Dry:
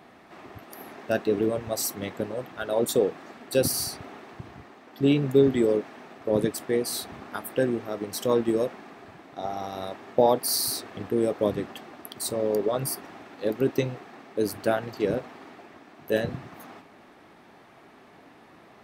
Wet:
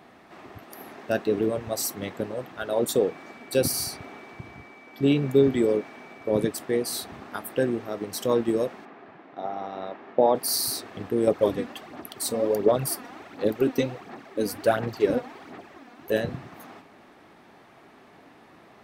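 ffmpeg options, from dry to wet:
-filter_complex "[0:a]asettb=1/sr,asplit=3[s0][s1][s2];[s0]atrim=end=3.094[s3];[s1]atrim=start=3.09:end=6.46,asetpts=PTS-STARTPTS,afade=t=in:d=0.004:c=qsin,afade=t=out:st=3.366:d=0.004:c=qsin,aeval=exprs='val(0)+0.00316*sin(2*PI*2300*n/s)':c=same[s4];[s2]atrim=start=6.456[s5];[s3][s4]acrossfade=d=0.004:c1=hsin:c2=qsin[s6];[s6][s5]acrossfade=d=0.004:c1=qsin:c2=hsin,asettb=1/sr,asplit=3[s7][s8][s9];[s7]atrim=end=8.854[s10];[s8]atrim=start=8.85:end=10.35,asetpts=PTS-STARTPTS,afade=t=in:d=0.004:c=qsin,afade=t=out:st=1.496:d=0.004:c=qsin,highpass=180,lowpass=2600[s11];[s9]atrim=start=10.346[s12];[s10][s11]acrossfade=d=0.004:c1=hsin:c2=qsin[s13];[s13][s12]acrossfade=d=0.004:c1=qsin:c2=hsin,asettb=1/sr,asplit=3[s14][s15][s16];[s14]atrim=end=11.274[s17];[s15]atrim=start=11.27:end=16.12,asetpts=PTS-STARTPTS,afade=t=in:d=0.004:c=qsin,afade=t=out:st=4.846:d=0.004:c=qsin,aphaser=in_gain=1:out_gain=1:delay=4.2:decay=0.56:speed=1.4:type=sinusoidal[s18];[s16]atrim=start=16.116[s19];[s17][s18]acrossfade=d=0.004:c1=hsin:c2=qsin[s20];[s20][s19]acrossfade=d=0.004:c1=qsin:c2=hsin"

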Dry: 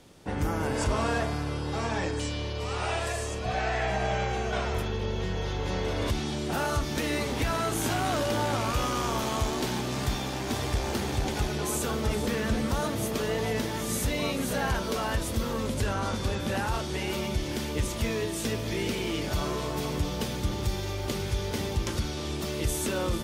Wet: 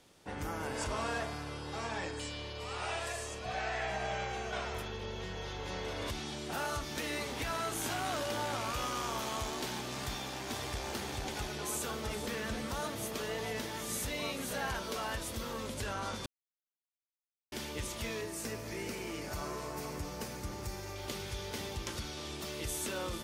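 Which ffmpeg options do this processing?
-filter_complex "[0:a]asettb=1/sr,asplit=3[s0][s1][s2];[s0]atrim=end=1.874[s3];[s1]atrim=start=1.87:end=2.82,asetpts=PTS-STARTPTS,afade=t=in:d=0.004:c=qsin,afade=t=out:st=0.946:d=0.004:c=qsin,bandreject=f=5900:w=12[s4];[s2]atrim=start=2.816[s5];[s3][s4]acrossfade=d=0.004:c1=hsin:c2=qsin[s6];[s6][s5]acrossfade=d=0.004:c1=qsin:c2=hsin,asettb=1/sr,asplit=3[s7][s8][s9];[s7]atrim=end=18.214[s10];[s8]atrim=start=18.21:end=20.96,asetpts=PTS-STARTPTS,afade=t=in:d=0.004:c=qsin,afade=t=out:st=2.746:d=0.004:c=qsin,equalizer=f=3400:w=2.5:g=-11.5[s11];[s9]atrim=start=20.956[s12];[s10][s11]acrossfade=d=0.004:c1=hsin:c2=qsin[s13];[s13][s12]acrossfade=d=0.004:c1=qsin:c2=hsin,asplit=3[s14][s15][s16];[s14]atrim=end=16.26,asetpts=PTS-STARTPTS,afade=t=out:st=16.256:d=0.004:c=hsin[s17];[s15]atrim=start=16.26:end=17.52,asetpts=PTS-STARTPTS,volume=0[s18];[s16]atrim=start=17.52,asetpts=PTS-STARTPTS,afade=t=in:d=0.004:c=hsin[s19];[s17][s18][s19]concat=n=3:v=0:a=1,lowshelf=f=460:g=-8,volume=0.562"

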